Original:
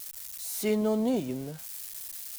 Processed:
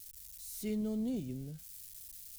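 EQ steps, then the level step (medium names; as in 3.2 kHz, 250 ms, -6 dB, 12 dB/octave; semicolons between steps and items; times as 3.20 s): amplifier tone stack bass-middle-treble 10-0-1; +10.5 dB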